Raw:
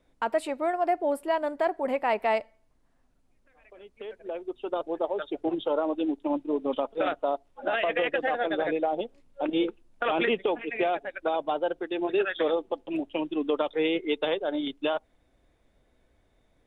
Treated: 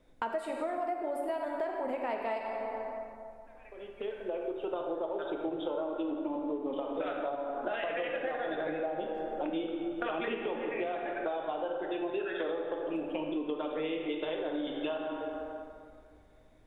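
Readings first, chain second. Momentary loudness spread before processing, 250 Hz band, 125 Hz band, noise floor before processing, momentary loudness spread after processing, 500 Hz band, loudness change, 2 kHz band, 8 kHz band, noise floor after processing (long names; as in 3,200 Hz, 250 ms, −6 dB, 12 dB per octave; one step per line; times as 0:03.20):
6 LU, −5.0 dB, −3.5 dB, −67 dBFS, 6 LU, −6.0 dB, −6.5 dB, −7.5 dB, can't be measured, −56 dBFS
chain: low-shelf EQ 490 Hz +3 dB
dense smooth reverb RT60 2.1 s, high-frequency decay 0.55×, pre-delay 0 ms, DRR 0.5 dB
downward compressor 6 to 1, threshold −32 dBFS, peak gain reduction 15 dB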